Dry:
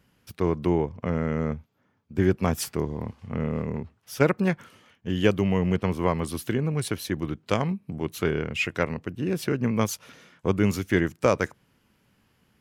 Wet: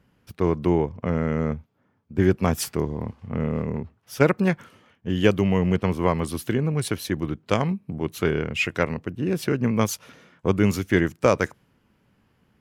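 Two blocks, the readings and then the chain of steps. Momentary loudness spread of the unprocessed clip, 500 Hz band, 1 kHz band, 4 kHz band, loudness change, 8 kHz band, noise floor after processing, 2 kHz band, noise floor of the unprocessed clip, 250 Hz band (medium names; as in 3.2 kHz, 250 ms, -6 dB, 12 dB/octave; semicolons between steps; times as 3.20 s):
9 LU, +2.5 dB, +2.5 dB, +2.0 dB, +2.5 dB, +2.0 dB, -67 dBFS, +2.5 dB, -68 dBFS, +2.5 dB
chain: tape noise reduction on one side only decoder only; trim +2.5 dB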